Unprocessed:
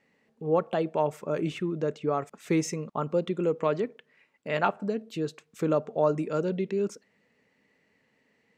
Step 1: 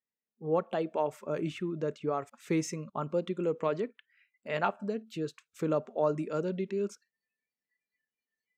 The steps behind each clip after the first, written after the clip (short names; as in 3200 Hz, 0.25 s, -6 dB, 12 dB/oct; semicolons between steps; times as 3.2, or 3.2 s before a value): spectral noise reduction 29 dB; gain -4 dB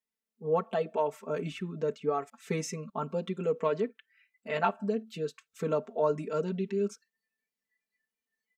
comb 4.5 ms, depth 98%; gain -2 dB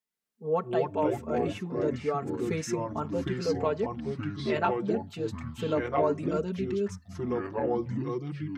echoes that change speed 0.105 s, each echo -4 st, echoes 3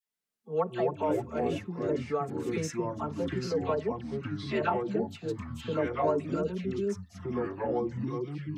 dispersion lows, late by 66 ms, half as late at 1200 Hz; gain -1.5 dB